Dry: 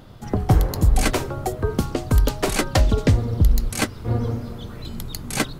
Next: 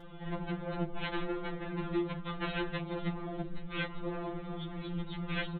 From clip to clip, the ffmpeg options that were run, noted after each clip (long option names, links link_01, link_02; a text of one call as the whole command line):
ffmpeg -i in.wav -af "acompressor=threshold=-18dB:ratio=2.5,aresample=8000,volume=28dB,asoftclip=hard,volume=-28dB,aresample=44100,afftfilt=real='re*2.83*eq(mod(b,8),0)':imag='im*2.83*eq(mod(b,8),0)':win_size=2048:overlap=0.75" out.wav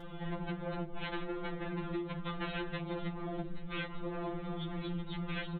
ffmpeg -i in.wav -af "acompressor=threshold=-38dB:ratio=6,volume=3.5dB" out.wav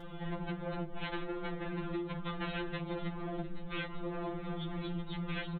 ffmpeg -i in.wav -filter_complex "[0:a]asplit=2[link_01][link_02];[link_02]adelay=699.7,volume=-15dB,highshelf=frequency=4000:gain=-15.7[link_03];[link_01][link_03]amix=inputs=2:normalize=0" out.wav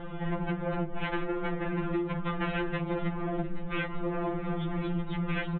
ffmpeg -i in.wav -af "lowpass=frequency=2800:width=0.5412,lowpass=frequency=2800:width=1.3066,volume=7dB" out.wav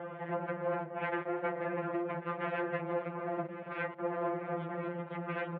ffmpeg -i in.wav -af "aeval=exprs='clip(val(0),-1,0.0158)':channel_layout=same,highpass=frequency=160:width=0.5412,highpass=frequency=160:width=1.3066,equalizer=frequency=190:width_type=q:width=4:gain=-9,equalizer=frequency=290:width_type=q:width=4:gain=-8,equalizer=frequency=580:width_type=q:width=4:gain=9,lowpass=frequency=2300:width=0.5412,lowpass=frequency=2300:width=1.3066,aecho=1:1:1090:0.15" out.wav